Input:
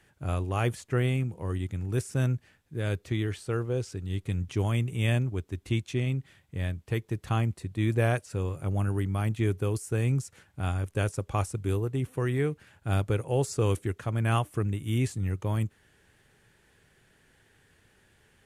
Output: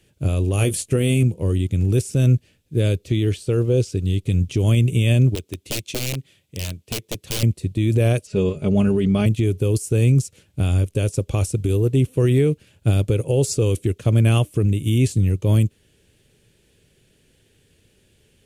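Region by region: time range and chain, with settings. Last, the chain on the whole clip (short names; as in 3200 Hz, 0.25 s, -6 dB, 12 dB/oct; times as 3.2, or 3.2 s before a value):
0.53–1.23 bell 10000 Hz +11 dB 0.71 oct + doubler 20 ms -9 dB
5.35–7.43 HPF 74 Hz + low shelf 320 Hz -7.5 dB + wrapped overs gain 28 dB
8.27–9.26 LPF 5100 Hz + comb 4.8 ms, depth 75%
whole clip: band shelf 1200 Hz -12.5 dB; maximiser +24.5 dB; upward expander 1.5:1, over -26 dBFS; gain -8 dB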